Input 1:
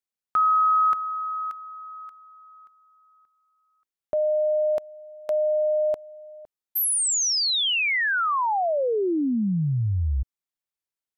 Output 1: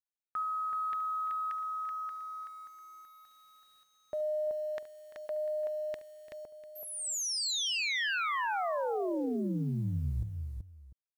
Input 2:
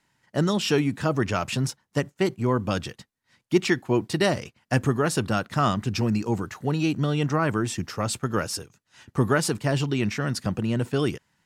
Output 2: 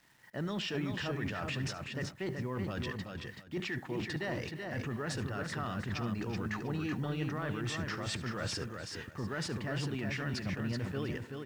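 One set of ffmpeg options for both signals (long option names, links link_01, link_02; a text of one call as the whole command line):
ffmpeg -i in.wav -af "lowpass=4000,equalizer=frequency=1800:width=4.4:gain=7.5,areverse,acompressor=threshold=-33dB:ratio=10:attack=0.53:release=74:knee=1:detection=peak,areverse,acrusher=bits=10:mix=0:aa=0.000001,aecho=1:1:72|342|379|696:0.141|0.141|0.562|0.119,volume=1dB" out.wav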